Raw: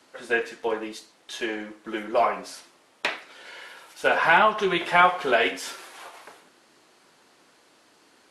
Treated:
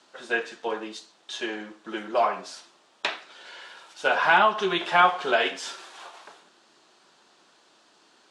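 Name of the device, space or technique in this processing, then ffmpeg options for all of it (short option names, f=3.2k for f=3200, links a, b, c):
car door speaker: -af "highpass=100,equalizer=f=110:t=q:w=4:g=-10,equalizer=f=160:t=q:w=4:g=-3,equalizer=f=270:t=q:w=4:g=-6,equalizer=f=490:t=q:w=4:g=-5,equalizer=f=2.1k:t=q:w=4:g=-6,equalizer=f=3.6k:t=q:w=4:g=3,lowpass=f=8.2k:w=0.5412,lowpass=f=8.2k:w=1.3066"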